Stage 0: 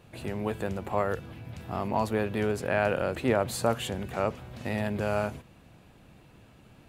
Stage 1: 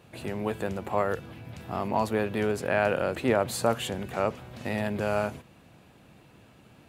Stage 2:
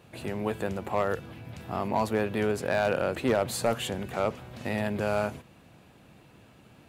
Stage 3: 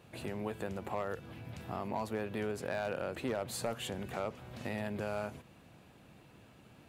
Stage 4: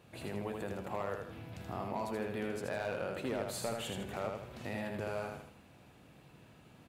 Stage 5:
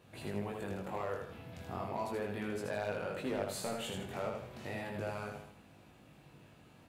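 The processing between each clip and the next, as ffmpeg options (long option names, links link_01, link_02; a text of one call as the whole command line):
ffmpeg -i in.wav -af "highpass=frequency=110:poles=1,volume=1.5dB" out.wav
ffmpeg -i in.wav -af "asoftclip=type=hard:threshold=-17dB" out.wav
ffmpeg -i in.wav -af "acompressor=threshold=-34dB:ratio=2,volume=-3.5dB" out.wav
ffmpeg -i in.wav -af "aecho=1:1:79|158|237|316|395:0.631|0.246|0.096|0.0374|0.0146,volume=-2dB" out.wav
ffmpeg -i in.wav -af "flanger=delay=19:depth=3.7:speed=0.35,volume=2.5dB" out.wav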